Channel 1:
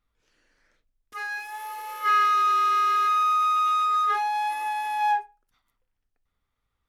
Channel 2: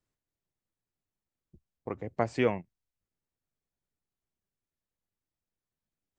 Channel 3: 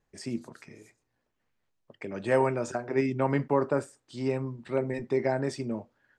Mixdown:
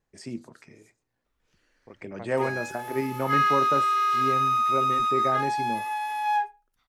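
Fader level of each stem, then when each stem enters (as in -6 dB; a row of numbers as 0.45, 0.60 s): -1.5, -13.0, -2.0 dB; 1.25, 0.00, 0.00 s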